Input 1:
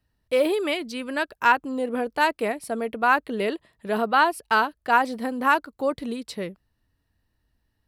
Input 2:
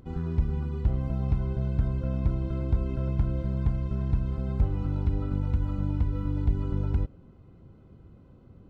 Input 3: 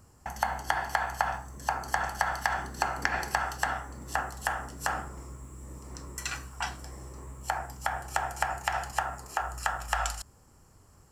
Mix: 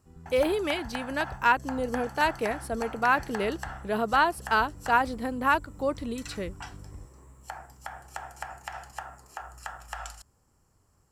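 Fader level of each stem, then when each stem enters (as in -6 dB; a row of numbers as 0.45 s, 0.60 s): -3.5 dB, -18.0 dB, -9.0 dB; 0.00 s, 0.00 s, 0.00 s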